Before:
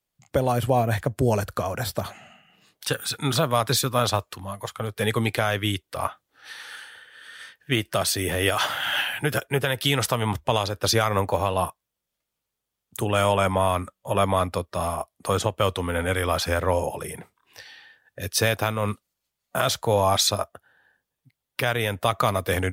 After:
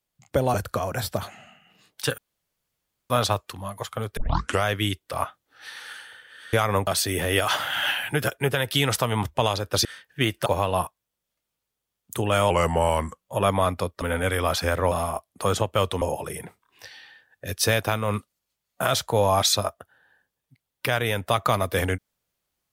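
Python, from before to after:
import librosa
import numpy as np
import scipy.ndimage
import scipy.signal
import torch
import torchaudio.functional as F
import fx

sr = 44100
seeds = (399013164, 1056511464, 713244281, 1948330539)

y = fx.edit(x, sr, fx.cut(start_s=0.54, length_s=0.83),
    fx.room_tone_fill(start_s=3.01, length_s=0.92),
    fx.tape_start(start_s=5.0, length_s=0.47),
    fx.swap(start_s=7.36, length_s=0.61, other_s=10.95, other_length_s=0.34),
    fx.speed_span(start_s=13.33, length_s=0.63, speed=0.88),
    fx.move(start_s=15.86, length_s=0.9, to_s=14.76), tone=tone)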